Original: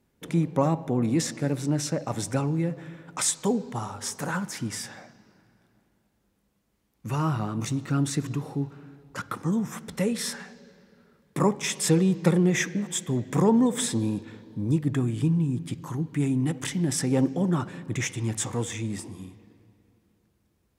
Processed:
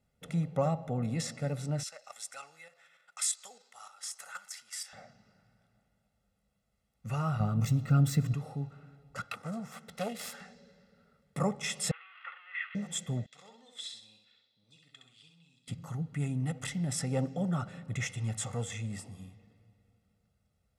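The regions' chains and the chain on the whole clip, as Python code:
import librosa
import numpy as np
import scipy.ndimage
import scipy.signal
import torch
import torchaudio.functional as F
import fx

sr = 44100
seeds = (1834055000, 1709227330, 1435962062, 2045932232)

y = fx.chain(x, sr, fx.level_steps(step_db=9),
    fx.highpass(hz=1300.0, slope=12),
    fx.high_shelf(hz=3900.0, db=6.0), at=(1.83, 4.93))
y = fx.chain(y, sr, fx.low_shelf(hz=350.0, db=9.0),
    fx.resample_bad(factor=2, down='filtered', up='zero_stuff'), at=(7.4, 8.34))
y = fx.chain(y, sr, fx.self_delay(depth_ms=0.45),
    fx.highpass(hz=300.0, slope=6), at=(9.24, 10.41))
y = fx.chain(y, sr, fx.crossing_spikes(level_db=-14.5),
    fx.ellip_bandpass(low_hz=1100.0, high_hz=3000.0, order=3, stop_db=80),
    fx.air_absorb(metres=380.0), at=(11.91, 12.75))
y = fx.chain(y, sr, fx.bandpass_q(hz=3900.0, q=3.2),
    fx.echo_feedback(ms=65, feedback_pct=37, wet_db=-4.5), at=(13.26, 15.68))
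y = scipy.signal.sosfilt(scipy.signal.butter(2, 11000.0, 'lowpass', fs=sr, output='sos'), y)
y = fx.peak_eq(y, sr, hz=6300.0, db=-3.5, octaves=0.2)
y = y + 0.81 * np.pad(y, (int(1.5 * sr / 1000.0), 0))[:len(y)]
y = y * librosa.db_to_amplitude(-8.0)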